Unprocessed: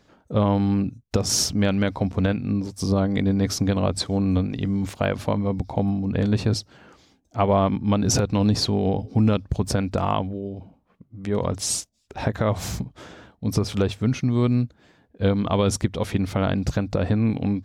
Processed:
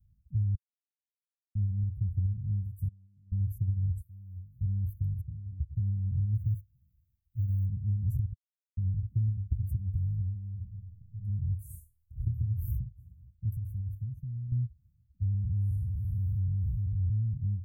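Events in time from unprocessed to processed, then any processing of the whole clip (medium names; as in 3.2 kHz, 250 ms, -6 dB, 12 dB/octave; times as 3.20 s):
0.55–1.55 s: mute
2.88–3.32 s: vowel filter a
4.01–4.61 s: pre-emphasis filter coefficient 0.9
5.21–5.76 s: pitch-class resonator C#, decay 0.1 s
6.35–7.66 s: companding laws mixed up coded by A
8.33–8.77 s: mute
9.30–9.93 s: hum notches 50/100/150/200/250/300/350 Hz
10.51–11.19 s: reverb throw, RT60 0.91 s, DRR -4 dB
11.78–12.71 s: flutter echo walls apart 4.3 m, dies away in 0.28 s
13.49–14.52 s: compression 4:1, threshold -28 dBFS
15.22–17.34 s: spectral blur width 172 ms
whole clip: inverse Chebyshev band-stop 440–5000 Hz, stop band 70 dB; bass shelf 470 Hz +4 dB; compression 3:1, threshold -27 dBFS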